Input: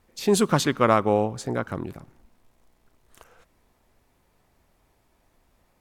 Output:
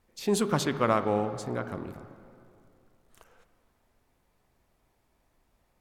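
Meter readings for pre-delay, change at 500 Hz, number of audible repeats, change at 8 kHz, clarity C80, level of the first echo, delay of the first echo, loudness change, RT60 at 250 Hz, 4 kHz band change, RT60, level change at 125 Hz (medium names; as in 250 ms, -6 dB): 6 ms, -5.5 dB, no echo, -6.0 dB, 12.0 dB, no echo, no echo, -5.5 dB, 2.5 s, -6.0 dB, 2.5 s, -5.5 dB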